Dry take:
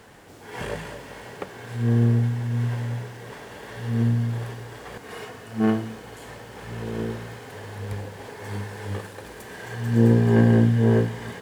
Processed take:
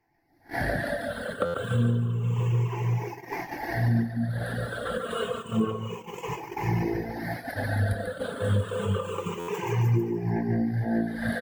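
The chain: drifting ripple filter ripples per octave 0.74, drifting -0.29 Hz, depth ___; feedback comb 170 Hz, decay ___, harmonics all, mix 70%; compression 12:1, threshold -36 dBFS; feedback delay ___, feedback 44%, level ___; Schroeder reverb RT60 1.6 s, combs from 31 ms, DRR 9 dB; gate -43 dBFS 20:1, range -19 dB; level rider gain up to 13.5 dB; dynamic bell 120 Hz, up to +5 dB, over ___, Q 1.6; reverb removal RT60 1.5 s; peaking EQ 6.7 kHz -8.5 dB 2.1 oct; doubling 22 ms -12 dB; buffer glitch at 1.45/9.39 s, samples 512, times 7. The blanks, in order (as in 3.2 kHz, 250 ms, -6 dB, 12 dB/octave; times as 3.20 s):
18 dB, 0.28 s, 144 ms, -5 dB, -38 dBFS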